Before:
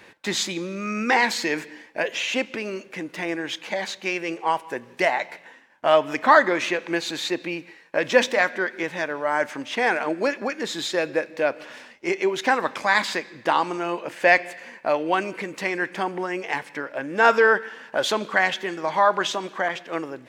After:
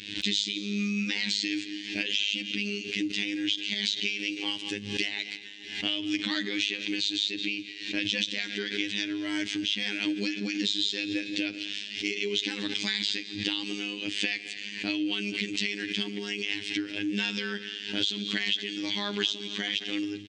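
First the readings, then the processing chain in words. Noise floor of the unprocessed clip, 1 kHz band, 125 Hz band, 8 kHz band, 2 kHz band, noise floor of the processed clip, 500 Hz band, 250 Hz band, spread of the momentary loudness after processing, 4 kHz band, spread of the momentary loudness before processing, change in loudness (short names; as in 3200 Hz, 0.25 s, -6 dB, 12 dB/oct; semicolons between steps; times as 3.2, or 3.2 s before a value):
-50 dBFS, -25.5 dB, -2.0 dB, -4.5 dB, -8.5 dB, -41 dBFS, -16.5 dB, -1.0 dB, 5 LU, +4.0 dB, 12 LU, -6.0 dB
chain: EQ curve 190 Hz 0 dB, 290 Hz +5 dB, 570 Hz -24 dB, 1200 Hz -24 dB, 3200 Hz +13 dB, 8400 Hz -2 dB, 13000 Hz -30 dB; in parallel at -2 dB: limiter -14 dBFS, peak gain reduction 10.5 dB; on the sum: compressor 6:1, threshold -25 dBFS, peak gain reduction 14.5 dB; robotiser 102 Hz; on a send: feedback echo 0.218 s, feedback 52%, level -20 dB; on the sum: backwards sustainer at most 73 dB/s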